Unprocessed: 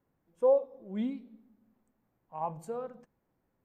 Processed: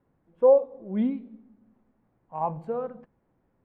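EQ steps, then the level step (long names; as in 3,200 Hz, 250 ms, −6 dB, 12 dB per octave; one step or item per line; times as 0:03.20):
high-frequency loss of the air 430 metres
+8.0 dB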